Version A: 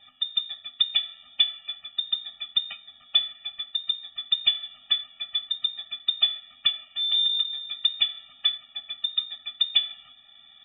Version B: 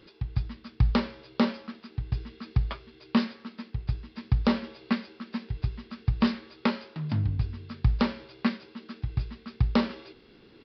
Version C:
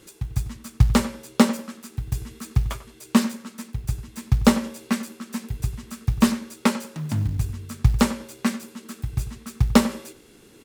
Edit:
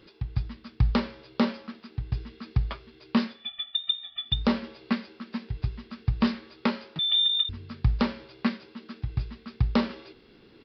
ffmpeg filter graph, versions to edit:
-filter_complex "[0:a]asplit=2[s0][s1];[1:a]asplit=3[s2][s3][s4];[s2]atrim=end=3.5[s5];[s0]atrim=start=3.26:end=4.47[s6];[s3]atrim=start=4.23:end=6.992[s7];[s1]atrim=start=6.988:end=7.492[s8];[s4]atrim=start=7.488[s9];[s5][s6]acrossfade=d=0.24:c1=tri:c2=tri[s10];[s10][s7]acrossfade=d=0.24:c1=tri:c2=tri[s11];[s11][s8]acrossfade=d=0.004:c1=hsin:c2=hsin[s12];[s12][s9]acrossfade=d=0.004:c1=hsin:c2=hsin"

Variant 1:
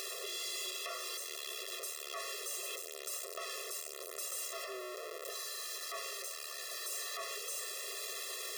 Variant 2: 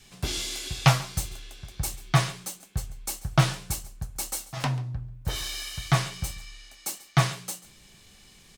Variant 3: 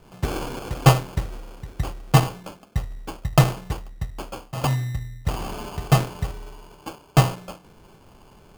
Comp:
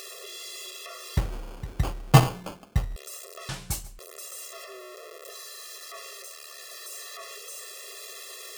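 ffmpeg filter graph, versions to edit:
-filter_complex "[0:a]asplit=3[s0][s1][s2];[s0]atrim=end=1.172[s3];[2:a]atrim=start=1.168:end=2.962[s4];[s1]atrim=start=2.958:end=3.492[s5];[1:a]atrim=start=3.488:end=3.992[s6];[s2]atrim=start=3.988[s7];[s3][s4]acrossfade=d=0.004:c1=hsin:c2=hsin[s8];[s8][s5]acrossfade=d=0.004:c1=hsin:c2=hsin[s9];[s9][s6]acrossfade=d=0.004:c1=hsin:c2=hsin[s10];[s10][s7]acrossfade=d=0.004:c1=hsin:c2=hsin"

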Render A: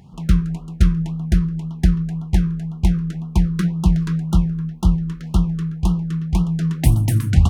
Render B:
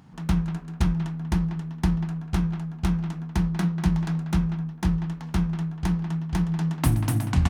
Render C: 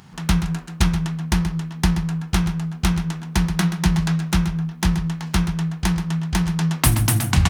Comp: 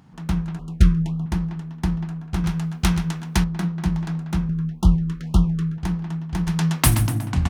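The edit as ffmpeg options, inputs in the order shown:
-filter_complex "[0:a]asplit=2[s0][s1];[2:a]asplit=2[s2][s3];[1:a]asplit=5[s4][s5][s6][s7][s8];[s4]atrim=end=0.592[s9];[s0]atrim=start=0.588:end=1.262[s10];[s5]atrim=start=1.258:end=2.442[s11];[s2]atrim=start=2.438:end=3.442[s12];[s6]atrim=start=3.438:end=4.492[s13];[s1]atrim=start=4.488:end=5.782[s14];[s7]atrim=start=5.778:end=6.472[s15];[s3]atrim=start=6.468:end=7.082[s16];[s8]atrim=start=7.078[s17];[s9][s10]acrossfade=d=0.004:c1=hsin:c2=hsin[s18];[s18][s11]acrossfade=d=0.004:c1=hsin:c2=hsin[s19];[s19][s12]acrossfade=d=0.004:c1=hsin:c2=hsin[s20];[s20][s13]acrossfade=d=0.004:c1=hsin:c2=hsin[s21];[s21][s14]acrossfade=d=0.004:c1=hsin:c2=hsin[s22];[s22][s15]acrossfade=d=0.004:c1=hsin:c2=hsin[s23];[s23][s16]acrossfade=d=0.004:c1=hsin:c2=hsin[s24];[s24][s17]acrossfade=d=0.004:c1=hsin:c2=hsin"

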